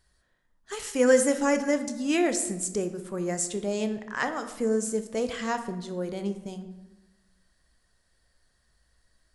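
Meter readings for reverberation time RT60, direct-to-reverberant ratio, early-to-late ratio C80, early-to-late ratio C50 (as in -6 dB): 1.1 s, 8.0 dB, 12.5 dB, 11.0 dB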